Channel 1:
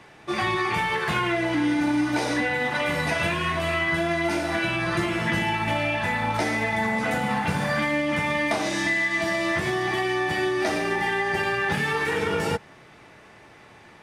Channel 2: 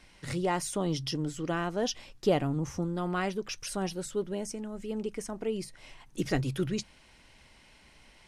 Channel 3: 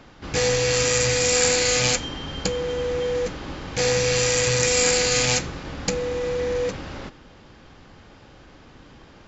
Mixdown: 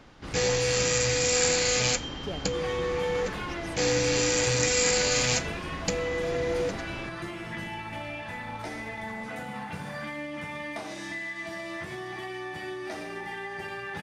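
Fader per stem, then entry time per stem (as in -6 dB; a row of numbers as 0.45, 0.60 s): -12.0, -12.0, -4.5 dB; 2.25, 0.00, 0.00 s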